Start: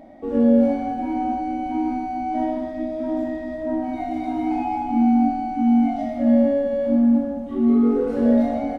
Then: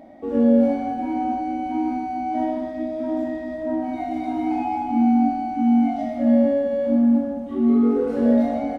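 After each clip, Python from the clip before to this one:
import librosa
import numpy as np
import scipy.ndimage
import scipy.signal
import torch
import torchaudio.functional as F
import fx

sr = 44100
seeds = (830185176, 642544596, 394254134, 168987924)

y = fx.highpass(x, sr, hz=74.0, slope=6)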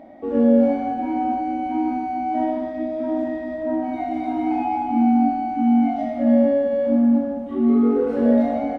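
y = fx.bass_treble(x, sr, bass_db=-3, treble_db=-8)
y = F.gain(torch.from_numpy(y), 2.0).numpy()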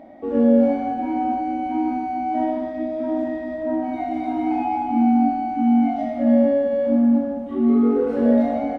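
y = x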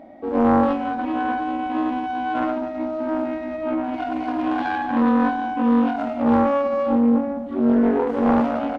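y = fx.self_delay(x, sr, depth_ms=0.64)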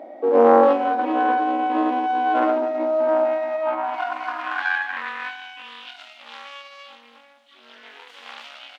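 y = fx.filter_sweep_highpass(x, sr, from_hz=440.0, to_hz=3300.0, start_s=2.73, end_s=5.87, q=2.2)
y = F.gain(torch.from_numpy(y), 2.0).numpy()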